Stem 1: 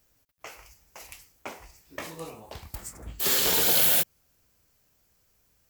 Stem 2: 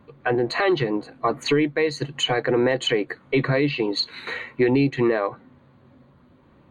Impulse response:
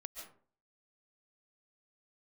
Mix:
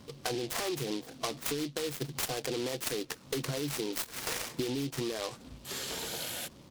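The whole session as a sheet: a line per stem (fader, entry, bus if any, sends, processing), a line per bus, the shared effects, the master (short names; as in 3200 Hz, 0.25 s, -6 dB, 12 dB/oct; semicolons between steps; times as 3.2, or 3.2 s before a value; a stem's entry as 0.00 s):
-11.0 dB, 2.45 s, no send, LPF 9700 Hz 12 dB/oct
+0.5 dB, 0.00 s, no send, limiter -16 dBFS, peak gain reduction 5.5 dB; noise-modulated delay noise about 3600 Hz, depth 0.13 ms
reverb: off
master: compressor 6:1, threshold -32 dBFS, peak gain reduction 12 dB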